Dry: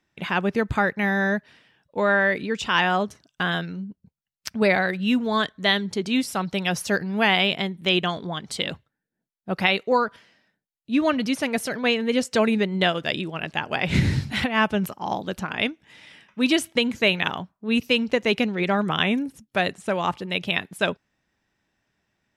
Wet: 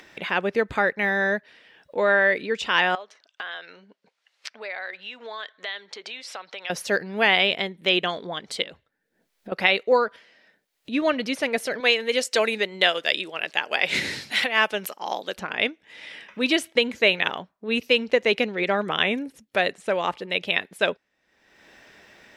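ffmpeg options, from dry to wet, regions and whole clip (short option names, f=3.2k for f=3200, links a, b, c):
-filter_complex "[0:a]asettb=1/sr,asplit=3[a][b][c];[a]atrim=end=2.954[d];[b]atrim=start=2.95:end=6.7,asetpts=PTS-STARTPTS,afade=t=in:d=0.004:c=qsin,afade=t=out:st=3.746:d=0.004:c=qsin,acompressor=threshold=-28dB:ratio=6:attack=3.2:release=140:knee=1:detection=peak,highpass=730,lowpass=5.2k[e];[c]atrim=start=6.696[f];[d][e]acrossfade=d=0.004:c1=hsin:c2=qsin[g];[g][f]acrossfade=d=0.004:c1=qsin:c2=hsin,asettb=1/sr,asplit=3[h][i][j];[h]atrim=end=8.624[k];[i]atrim=start=8.62:end=9.52,asetpts=PTS-STARTPTS,afade=t=in:d=0.004:c=qsin,afade=t=out:st=0.896:d=0.004:c=qsin,lowshelf=f=67:g=11,acompressor=threshold=-36dB:ratio=6:attack=3.2:release=140:knee=1:detection=peak[l];[j]atrim=start=9.516[m];[k][l]acrossfade=d=0.004:c1=hsin:c2=qsin[n];[n][m]acrossfade=d=0.004:c1=qsin:c2=hsin,asettb=1/sr,asplit=3[o][p][q];[o]atrim=end=11.804[r];[p]atrim=start=11.8:end=15.36,asetpts=PTS-STARTPTS,afade=t=in:d=0.004:c=qsin,afade=t=out:st=3.556:d=0.004:c=qsin,highpass=f=450:p=1,highshelf=f=3.7k:g=9[s];[q]atrim=start=15.356[t];[r][s]acrossfade=d=0.004:c1=hsin:c2=qsin[u];[u][t]acrossfade=d=0.004:c1=qsin:c2=hsin,equalizer=f=125:t=o:w=1:g=-6,equalizer=f=500:t=o:w=1:g=8,equalizer=f=2k:t=o:w=1:g=6,equalizer=f=4k:t=o:w=1:g=4,acompressor=mode=upward:threshold=-27dB:ratio=2.5,lowshelf=f=130:g=-6,volume=-4.5dB"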